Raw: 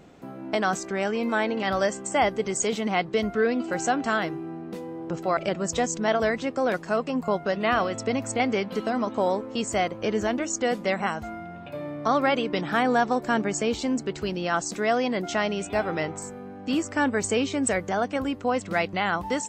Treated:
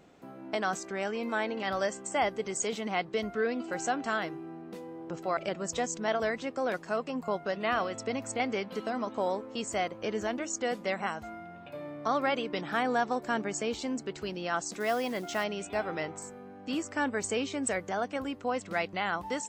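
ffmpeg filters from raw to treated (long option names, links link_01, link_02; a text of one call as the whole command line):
ffmpeg -i in.wav -filter_complex "[0:a]asettb=1/sr,asplit=3[link_01][link_02][link_03];[link_01]atrim=end=14.804[link_04];[link_02]atrim=start=14.8:end=15.44,asetpts=PTS-STARTPTS,afade=type=in:duration=0.004:curve=qsin,afade=type=out:start_time=0.636:duration=0.004:curve=qsin,acrusher=bits=5:mode=log:mix=0:aa=0.000001[link_05];[link_03]atrim=start=15.436[link_06];[link_04][link_05]acrossfade=duration=0.004:curve1=hsin:curve2=qsin[link_07];[link_07][link_06]acrossfade=duration=0.004:curve1=qsin:curve2=hsin,lowshelf=frequency=220:gain=-6,volume=-5.5dB" out.wav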